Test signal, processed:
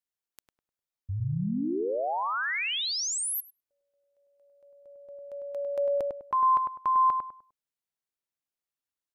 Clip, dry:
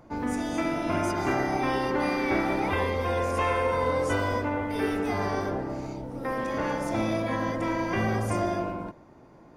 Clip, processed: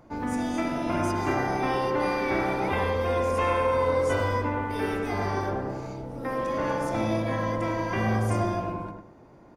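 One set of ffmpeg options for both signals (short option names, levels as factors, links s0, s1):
-filter_complex "[0:a]asplit=2[s0][s1];[s1]adelay=101,lowpass=f=1400:p=1,volume=0.668,asplit=2[s2][s3];[s3]adelay=101,lowpass=f=1400:p=1,volume=0.31,asplit=2[s4][s5];[s5]adelay=101,lowpass=f=1400:p=1,volume=0.31,asplit=2[s6][s7];[s7]adelay=101,lowpass=f=1400:p=1,volume=0.31[s8];[s0][s2][s4][s6][s8]amix=inputs=5:normalize=0,volume=0.891"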